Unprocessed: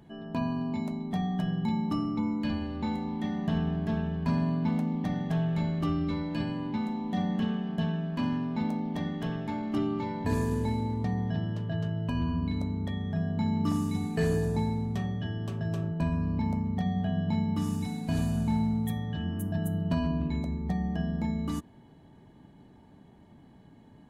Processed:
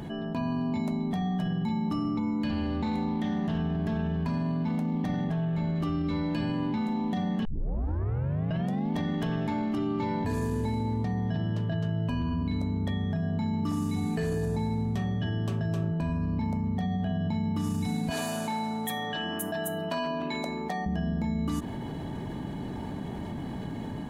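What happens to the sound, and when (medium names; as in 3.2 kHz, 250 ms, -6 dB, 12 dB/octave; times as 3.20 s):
2.51–3.59 s: loudspeaker Doppler distortion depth 0.13 ms
5.24–5.76 s: treble shelf 3.4 kHz -8 dB
7.45 s: tape start 1.47 s
18.10–20.86 s: high-pass 520 Hz
whole clip: level rider gain up to 9 dB; peak limiter -16 dBFS; level flattener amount 70%; trim -8.5 dB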